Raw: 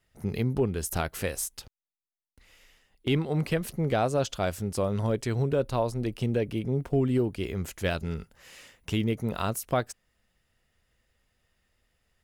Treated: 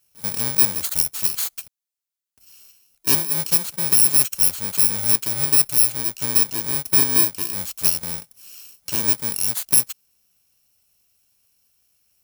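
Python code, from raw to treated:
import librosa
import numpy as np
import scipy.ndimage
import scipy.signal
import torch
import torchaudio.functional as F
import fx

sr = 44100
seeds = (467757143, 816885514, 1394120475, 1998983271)

p1 = fx.bit_reversed(x, sr, seeds[0], block=64)
p2 = fx.highpass(p1, sr, hz=170.0, slope=6)
p3 = fx.high_shelf(p2, sr, hz=2500.0, db=11.5)
p4 = fx.level_steps(p3, sr, step_db=17)
p5 = p3 + F.gain(torch.from_numpy(p4), -2.0).numpy()
y = F.gain(torch.from_numpy(p5), -3.5).numpy()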